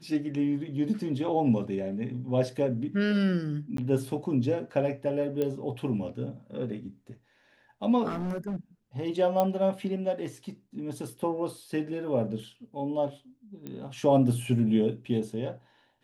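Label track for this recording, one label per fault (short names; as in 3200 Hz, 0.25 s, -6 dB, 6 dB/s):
3.770000	3.780000	gap 13 ms
5.420000	5.420000	pop -18 dBFS
8.080000	8.560000	clipped -29 dBFS
9.400000	9.400000	pop -14 dBFS
13.670000	13.670000	pop -25 dBFS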